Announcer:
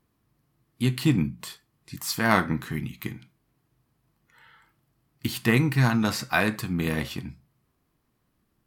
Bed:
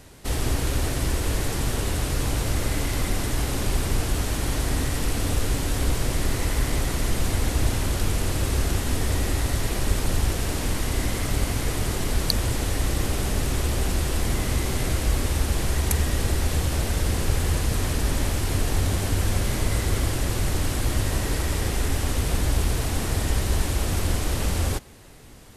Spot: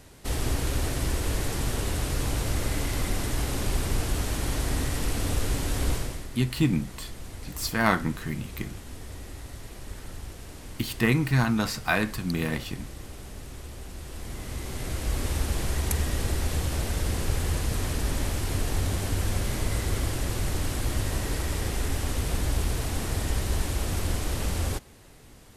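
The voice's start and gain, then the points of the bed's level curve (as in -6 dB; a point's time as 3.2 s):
5.55 s, -1.5 dB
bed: 5.94 s -3 dB
6.3 s -16.5 dB
13.91 s -16.5 dB
15.29 s -4 dB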